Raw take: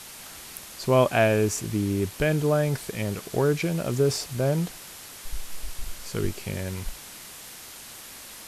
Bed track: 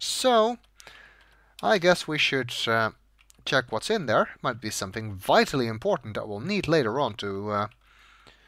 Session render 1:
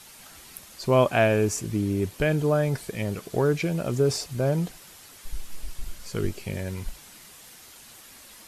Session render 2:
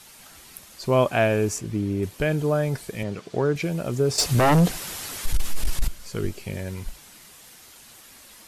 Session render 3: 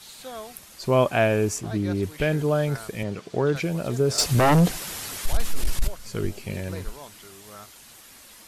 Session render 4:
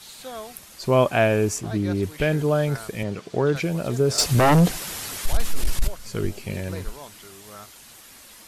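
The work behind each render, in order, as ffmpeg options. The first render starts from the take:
-af "afftdn=nr=7:nf=-43"
-filter_complex "[0:a]asettb=1/sr,asplit=3[s0][s1][s2];[s0]atrim=end=1.584[s3];[s1]atrim=start=1.58:end=2.03,asetpts=PTS-STARTPTS,afade=t=in:d=0.004:c=qsin,afade=t=out:st=0.446:d=0.004:c=qsin,highshelf=f=6100:g=-9[s4];[s2]atrim=start=2.026[s5];[s3][s4]acrossfade=d=0.004:c1=hsin:c2=qsin[s6];[s6][s5]acrossfade=d=0.004:c1=qsin:c2=hsin,asettb=1/sr,asplit=3[s7][s8][s9];[s7]atrim=end=3.034[s10];[s8]atrim=start=3.03:end=3.56,asetpts=PTS-STARTPTS,afade=t=in:d=0.004:c=qsin,afade=t=out:st=0.526:d=0.004:c=qsin,highpass=100,lowpass=5800[s11];[s9]atrim=start=3.556[s12];[s10][s11]acrossfade=d=0.004:c1=hsin:c2=qsin[s13];[s13][s12]acrossfade=d=0.004:c1=qsin:c2=hsin,asettb=1/sr,asplit=3[s14][s15][s16];[s14]atrim=end=4.184[s17];[s15]atrim=start=4.18:end=5.88,asetpts=PTS-STARTPTS,afade=t=in:d=0.004:c=qsin,afade=t=out:st=1.696:d=0.004:c=qsin,aeval=exprs='0.211*sin(PI/2*3.16*val(0)/0.211)':c=same[s18];[s16]atrim=start=5.876[s19];[s17][s18]acrossfade=d=0.004:c1=hsin:c2=qsin[s20];[s20][s19]acrossfade=d=0.004:c1=qsin:c2=hsin"
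-filter_complex "[1:a]volume=0.133[s0];[0:a][s0]amix=inputs=2:normalize=0"
-af "volume=1.19"

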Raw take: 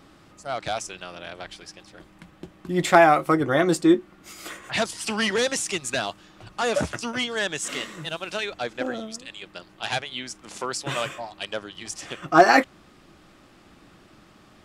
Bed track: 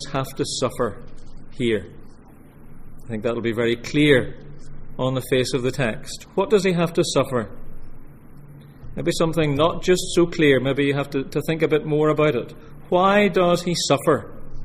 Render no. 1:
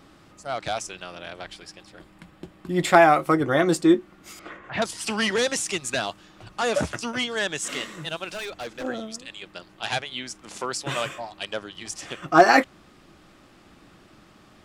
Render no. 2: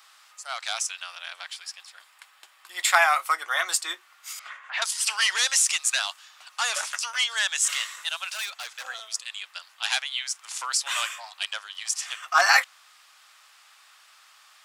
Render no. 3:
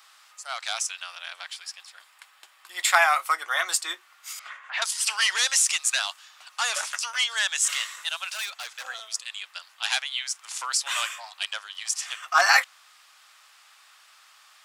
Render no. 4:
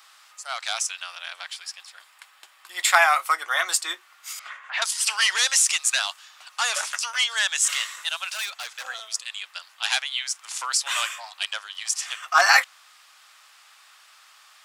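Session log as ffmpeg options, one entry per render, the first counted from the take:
-filter_complex "[0:a]asettb=1/sr,asplit=3[s0][s1][s2];[s0]atrim=end=1.534[s3];[s1]atrim=start=1.53:end=2.99,asetpts=PTS-STARTPTS,afade=t=in:d=0.004:c=qsin,afade=t=out:st=1.456:d=0.004:c=qsin,bandreject=f=6100:w=12[s4];[s2]atrim=start=2.986[s5];[s3][s4]acrossfade=d=0.004:c1=hsin:c2=qsin[s6];[s6][s5]acrossfade=d=0.004:c1=qsin:c2=hsin,asettb=1/sr,asplit=3[s7][s8][s9];[s7]atrim=end=4.394[s10];[s8]atrim=start=4.39:end=4.82,asetpts=PTS-STARTPTS,afade=t=in:d=0.004:c=qsin,afade=t=out:st=0.426:d=0.004:c=qsin,lowpass=1900[s11];[s9]atrim=start=4.816[s12];[s10][s11]acrossfade=d=0.004:c1=hsin:c2=qsin[s13];[s13][s12]acrossfade=d=0.004:c1=qsin:c2=hsin,asettb=1/sr,asplit=3[s14][s15][s16];[s14]atrim=end=8.304[s17];[s15]atrim=start=8.3:end=8.84,asetpts=PTS-STARTPTS,afade=t=in:d=0.004:c=qsin,afade=t=out:st=0.536:d=0.004:c=qsin,asoftclip=type=hard:threshold=0.0316[s18];[s16]atrim=start=8.836[s19];[s17][s18]acrossfade=d=0.004:c1=hsin:c2=qsin[s20];[s20][s19]acrossfade=d=0.004:c1=qsin:c2=hsin"
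-af "highpass=f=960:w=0.5412,highpass=f=960:w=1.3066,highshelf=f=3600:g=9.5"
-af anull
-af "volume=1.26"

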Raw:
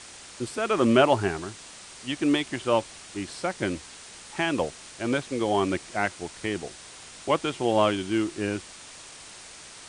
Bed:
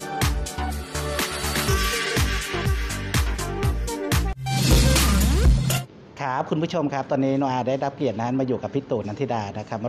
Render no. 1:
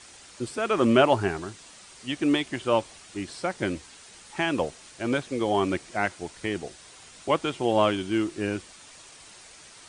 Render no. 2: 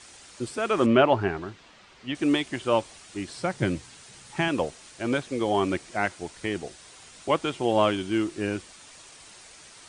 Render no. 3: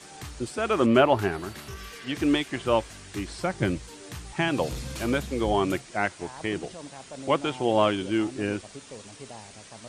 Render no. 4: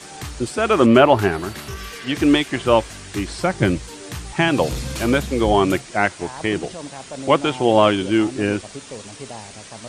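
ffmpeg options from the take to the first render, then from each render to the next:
-af "afftdn=nr=6:nf=-46"
-filter_complex "[0:a]asettb=1/sr,asplit=3[s0][s1][s2];[s0]atrim=end=0.864[s3];[s1]atrim=start=0.86:end=2.15,asetpts=PTS-STARTPTS,afade=t=in:d=0.004:c=qsin,afade=t=out:st=1.286:d=0.004:c=qsin,lowpass=3300[s4];[s2]atrim=start=2.146[s5];[s3][s4]acrossfade=d=0.004:c1=hsin:c2=qsin[s6];[s6][s5]acrossfade=d=0.004:c1=qsin:c2=hsin,asettb=1/sr,asplit=3[s7][s8][s9];[s7]atrim=end=3.354[s10];[s8]atrim=start=3.35:end=4.48,asetpts=PTS-STARTPTS,afade=t=in:d=0.004:c=qsin,afade=t=out:st=1.126:d=0.004:c=qsin,equalizer=f=130:t=o:w=0.82:g=12[s11];[s9]atrim=start=4.476[s12];[s10][s11]acrossfade=d=0.004:c1=hsin:c2=qsin[s13];[s13][s12]acrossfade=d=0.004:c1=qsin:c2=hsin"
-filter_complex "[1:a]volume=0.119[s0];[0:a][s0]amix=inputs=2:normalize=0"
-af "volume=2.51,alimiter=limit=0.891:level=0:latency=1"

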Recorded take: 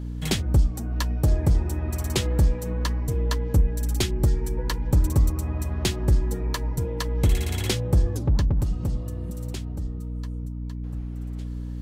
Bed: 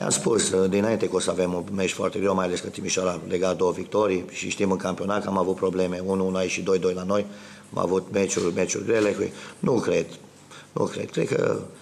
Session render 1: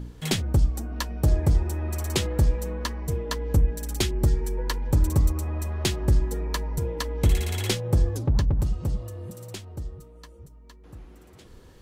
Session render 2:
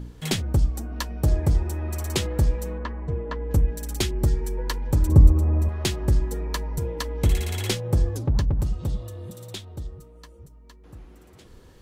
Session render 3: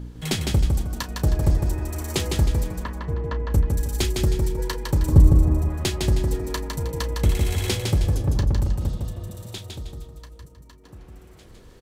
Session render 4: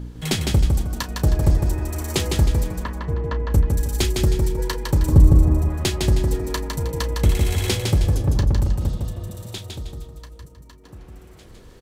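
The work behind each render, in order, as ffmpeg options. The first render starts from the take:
-af "bandreject=f=60:t=h:w=4,bandreject=f=120:t=h:w=4,bandreject=f=180:t=h:w=4,bandreject=f=240:t=h:w=4,bandreject=f=300:t=h:w=4"
-filter_complex "[0:a]asettb=1/sr,asplit=3[s0][s1][s2];[s0]atrim=end=2.784[s3];[s1]atrim=start=2.78:end=3.51,asetpts=PTS-STARTPTS,afade=t=in:d=0.004:c=qsin,afade=t=out:st=0.726:d=0.004:c=qsin,lowpass=1900[s4];[s2]atrim=start=3.506[s5];[s3][s4]acrossfade=d=0.004:c1=hsin:c2=qsin[s6];[s6][s5]acrossfade=d=0.004:c1=qsin:c2=hsin,asettb=1/sr,asplit=3[s7][s8][s9];[s7]atrim=end=5.094[s10];[s8]atrim=start=5.09:end=5.69,asetpts=PTS-STARTPTS,afade=t=in:d=0.004:c=qsin,afade=t=out:st=0.596:d=0.004:c=qsin,tiltshelf=f=970:g=8.5[s11];[s9]atrim=start=5.686[s12];[s10][s11]acrossfade=d=0.004:c1=hsin:c2=qsin[s13];[s13][s12]acrossfade=d=0.004:c1=qsin:c2=hsin,asettb=1/sr,asplit=3[s14][s15][s16];[s14]atrim=end=8.794[s17];[s15]atrim=start=8.79:end=9.87,asetpts=PTS-STARTPTS,afade=t=in:d=0.004:c=qsin,afade=t=out:st=1.076:d=0.004:c=qsin,equalizer=f=3600:w=4.4:g=10[s18];[s16]atrim=start=9.866[s19];[s17][s18]acrossfade=d=0.004:c1=hsin:c2=qsin[s20];[s20][s19]acrossfade=d=0.004:c1=qsin:c2=hsin"
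-filter_complex "[0:a]asplit=2[s0][s1];[s1]adelay=33,volume=0.237[s2];[s0][s2]amix=inputs=2:normalize=0,aecho=1:1:157|314|471|628|785:0.631|0.227|0.0818|0.0294|0.0106"
-af "volume=1.33,alimiter=limit=0.708:level=0:latency=1"

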